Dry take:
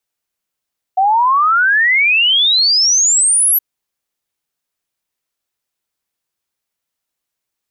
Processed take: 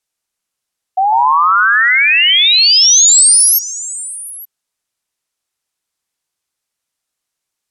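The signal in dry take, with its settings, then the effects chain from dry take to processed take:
log sweep 740 Hz -> 12000 Hz 2.62 s -9 dBFS
LPF 9600 Hz 12 dB/oct; high shelf 5900 Hz +9 dB; on a send: delay with a stepping band-pass 0.144 s, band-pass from 1000 Hz, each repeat 0.7 oct, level -4 dB

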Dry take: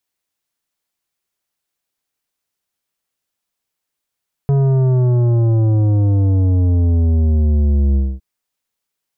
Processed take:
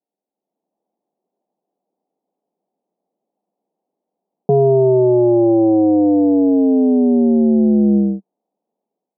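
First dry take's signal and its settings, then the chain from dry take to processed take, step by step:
sub drop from 140 Hz, over 3.71 s, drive 10.5 dB, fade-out 0.24 s, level -12 dB
elliptic band-pass 190–780 Hz, stop band 40 dB; AGC gain up to 10 dB; in parallel at -2.5 dB: limiter -16.5 dBFS

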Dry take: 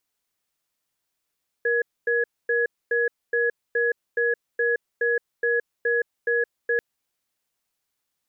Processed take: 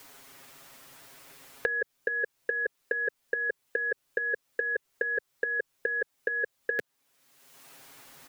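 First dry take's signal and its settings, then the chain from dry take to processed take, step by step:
cadence 472 Hz, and 1680 Hz, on 0.17 s, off 0.25 s, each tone -22 dBFS 5.14 s
comb 7.4 ms, depth 92%; three-band squash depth 100%

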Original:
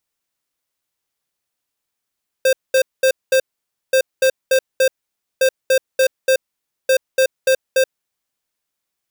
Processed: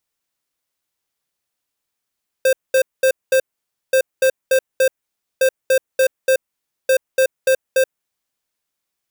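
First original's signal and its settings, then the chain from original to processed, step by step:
beep pattern square 525 Hz, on 0.08 s, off 0.21 s, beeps 4, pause 0.53 s, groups 4, -13 dBFS
dynamic EQ 4400 Hz, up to -6 dB, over -37 dBFS, Q 1.4

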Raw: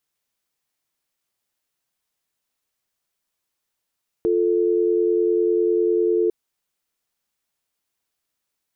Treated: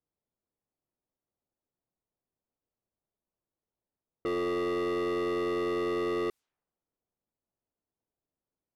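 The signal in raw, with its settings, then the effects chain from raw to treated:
call progress tone dial tone, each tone -19 dBFS 2.05 s
overloaded stage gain 29 dB; low-pass opened by the level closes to 590 Hz, open at -33.5 dBFS

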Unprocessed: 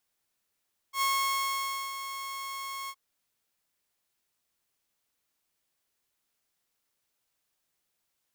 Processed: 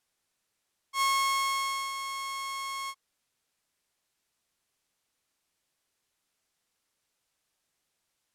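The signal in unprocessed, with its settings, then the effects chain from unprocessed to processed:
ADSR saw 1090 Hz, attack 86 ms, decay 0.904 s, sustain -11 dB, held 1.96 s, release 56 ms -22 dBFS
LPF 11000 Hz 12 dB/oct; in parallel at -10.5 dB: hard clip -29 dBFS

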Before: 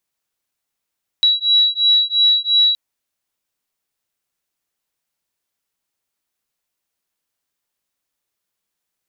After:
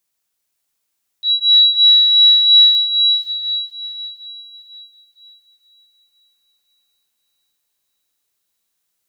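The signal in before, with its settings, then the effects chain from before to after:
beating tones 3900 Hz, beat 2.9 Hz, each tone -15 dBFS 1.52 s
high shelf 4100 Hz +7 dB; auto swell 0.114 s; on a send: diffused feedback echo 0.485 s, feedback 45%, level -4.5 dB

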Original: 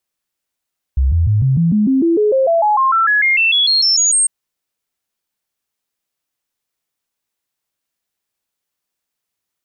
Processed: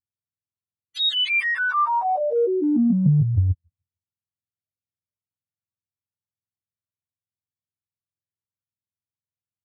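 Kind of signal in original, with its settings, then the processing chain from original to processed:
stepped sine 66.4 Hz up, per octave 3, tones 22, 0.15 s, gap 0.00 s -10 dBFS
spectrum mirrored in octaves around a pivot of 500 Hz; gate -13 dBFS, range -8 dB; spectral noise reduction 13 dB

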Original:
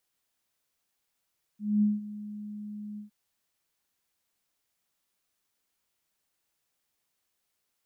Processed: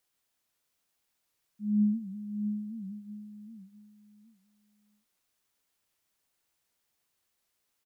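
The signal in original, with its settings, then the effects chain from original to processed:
ADSR sine 209 Hz, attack 0.23 s, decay 0.183 s, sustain -17 dB, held 1.39 s, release 0.12 s -19.5 dBFS
on a send: feedback echo 0.652 s, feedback 26%, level -7.5 dB; on the sum: record warp 78 rpm, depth 160 cents

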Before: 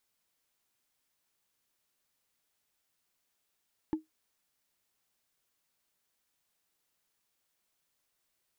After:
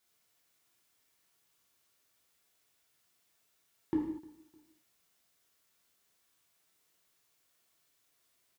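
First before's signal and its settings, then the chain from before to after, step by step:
wood hit, lowest mode 314 Hz, decay 0.15 s, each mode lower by 11.5 dB, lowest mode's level -23 dB
HPF 44 Hz; feedback echo 0.304 s, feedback 34%, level -22 dB; non-linear reverb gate 0.27 s falling, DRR -4 dB

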